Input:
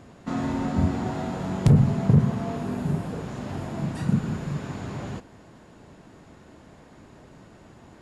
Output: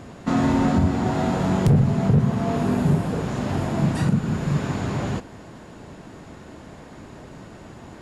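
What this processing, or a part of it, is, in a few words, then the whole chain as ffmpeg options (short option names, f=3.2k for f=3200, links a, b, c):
limiter into clipper: -af "alimiter=limit=-17dB:level=0:latency=1:release=424,asoftclip=type=hard:threshold=-20dB,volume=8dB"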